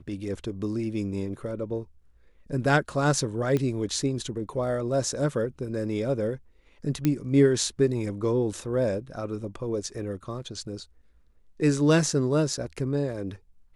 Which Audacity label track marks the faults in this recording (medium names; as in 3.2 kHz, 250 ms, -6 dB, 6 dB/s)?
3.570000	3.570000	pop -15 dBFS
7.050000	7.050000	pop -11 dBFS